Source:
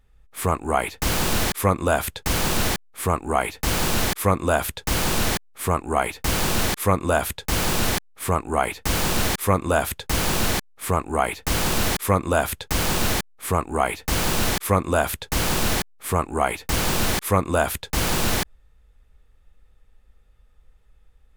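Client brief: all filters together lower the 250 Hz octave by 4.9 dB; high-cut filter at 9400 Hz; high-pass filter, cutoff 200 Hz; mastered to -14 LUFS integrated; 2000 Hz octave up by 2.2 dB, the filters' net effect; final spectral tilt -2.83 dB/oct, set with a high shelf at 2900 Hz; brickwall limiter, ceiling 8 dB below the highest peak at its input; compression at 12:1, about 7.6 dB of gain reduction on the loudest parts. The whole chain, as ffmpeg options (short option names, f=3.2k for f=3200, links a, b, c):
-af "highpass=200,lowpass=9.4k,equalizer=f=250:t=o:g=-4,equalizer=f=2k:t=o:g=6,highshelf=f=2.9k:g=-8,acompressor=threshold=-22dB:ratio=12,volume=16dB,alimiter=limit=-2.5dB:level=0:latency=1"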